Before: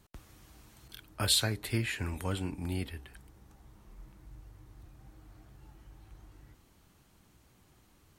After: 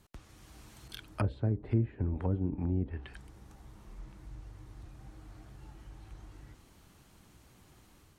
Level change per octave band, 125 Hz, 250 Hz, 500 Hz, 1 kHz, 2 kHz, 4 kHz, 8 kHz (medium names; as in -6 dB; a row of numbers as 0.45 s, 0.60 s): +4.0 dB, +3.5 dB, +1.0 dB, -2.5 dB, -11.5 dB, -20.0 dB, under -20 dB